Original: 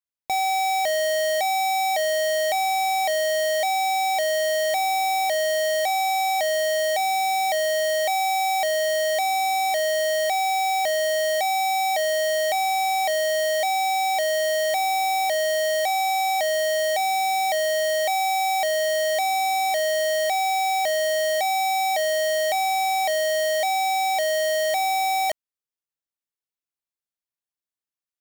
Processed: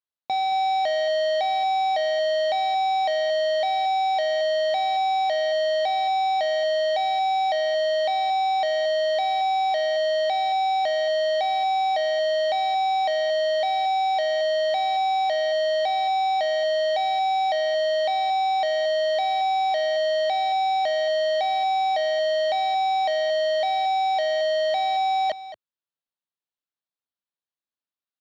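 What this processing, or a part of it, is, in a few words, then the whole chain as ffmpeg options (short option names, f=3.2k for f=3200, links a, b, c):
guitar cabinet: -af "highpass=77,equalizer=f=110:t=q:w=4:g=-9,equalizer=f=390:t=q:w=4:g=-5,equalizer=f=2.2k:t=q:w=4:g=-8,equalizer=f=4k:t=q:w=4:g=3,lowpass=f=4.2k:w=0.5412,lowpass=f=4.2k:w=1.3066,aecho=1:1:225:0.2"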